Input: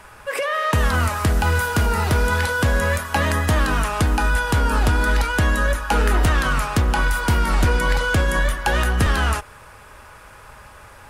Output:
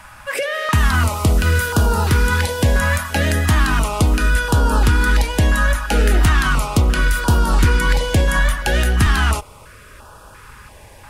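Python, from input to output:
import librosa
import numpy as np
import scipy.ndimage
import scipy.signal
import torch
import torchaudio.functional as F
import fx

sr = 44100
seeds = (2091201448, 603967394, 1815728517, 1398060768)

y = fx.filter_held_notch(x, sr, hz=2.9, low_hz=420.0, high_hz=2100.0)
y = y * 10.0 ** (4.0 / 20.0)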